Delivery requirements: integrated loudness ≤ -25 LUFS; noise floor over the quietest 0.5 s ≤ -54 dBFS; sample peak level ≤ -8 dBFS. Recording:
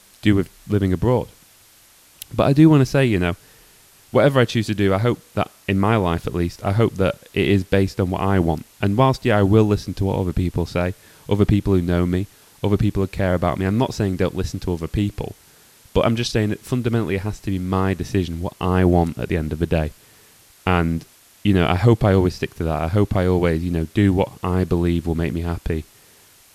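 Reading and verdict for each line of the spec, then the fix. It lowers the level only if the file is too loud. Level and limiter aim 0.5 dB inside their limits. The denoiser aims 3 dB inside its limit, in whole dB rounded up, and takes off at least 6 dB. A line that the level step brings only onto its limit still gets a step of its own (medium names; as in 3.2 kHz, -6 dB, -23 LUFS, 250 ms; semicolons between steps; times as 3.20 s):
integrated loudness -20.0 LUFS: fail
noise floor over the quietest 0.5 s -51 dBFS: fail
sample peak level -2.0 dBFS: fail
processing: trim -5.5 dB; peak limiter -8.5 dBFS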